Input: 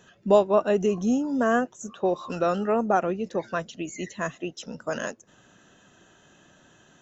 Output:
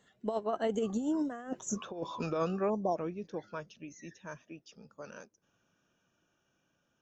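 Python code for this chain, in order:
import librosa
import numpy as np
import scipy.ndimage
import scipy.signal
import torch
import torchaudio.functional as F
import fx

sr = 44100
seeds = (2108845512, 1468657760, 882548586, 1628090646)

y = fx.doppler_pass(x, sr, speed_mps=29, closest_m=9.2, pass_at_s=1.63)
y = fx.over_compress(y, sr, threshold_db=-31.0, ratio=-0.5)
y = fx.spec_erase(y, sr, start_s=2.7, length_s=0.27, low_hz=1100.0, high_hz=3100.0)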